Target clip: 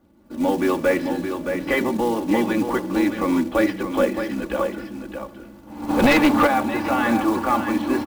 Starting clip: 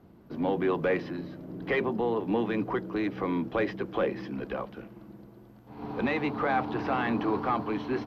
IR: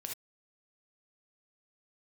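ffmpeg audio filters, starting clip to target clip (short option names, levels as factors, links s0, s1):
-filter_complex "[0:a]acrusher=bits=5:mode=log:mix=0:aa=0.000001,aecho=1:1:3.5:0.72,aecho=1:1:620:0.422,asplit=3[s0][s1][s2];[s0]afade=t=out:st=5.88:d=0.02[s3];[s1]aeval=exprs='0.2*(cos(1*acos(clip(val(0)/0.2,-1,1)))-cos(1*PI/2))+0.1*(cos(4*acos(clip(val(0)/0.2,-1,1)))-cos(4*PI/2))+0.0794*(cos(5*acos(clip(val(0)/0.2,-1,1)))-cos(5*PI/2))+0.0447*(cos(6*acos(clip(val(0)/0.2,-1,1)))-cos(6*PI/2))':c=same,afade=t=in:st=5.88:d=0.02,afade=t=out:st=6.46:d=0.02[s4];[s2]afade=t=in:st=6.46:d=0.02[s5];[s3][s4][s5]amix=inputs=3:normalize=0,asplit=2[s6][s7];[1:a]atrim=start_sample=2205,adelay=75[s8];[s7][s8]afir=irnorm=-1:irlink=0,volume=0.126[s9];[s6][s9]amix=inputs=2:normalize=0,dynaudnorm=f=140:g=5:m=3.35,volume=0.631"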